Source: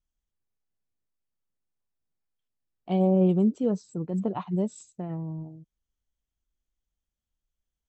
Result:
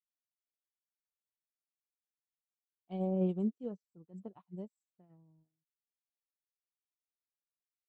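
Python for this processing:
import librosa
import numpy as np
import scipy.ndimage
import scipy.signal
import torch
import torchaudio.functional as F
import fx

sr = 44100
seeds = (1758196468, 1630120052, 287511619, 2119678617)

y = fx.upward_expand(x, sr, threshold_db=-43.0, expansion=2.5)
y = y * 10.0 ** (-8.5 / 20.0)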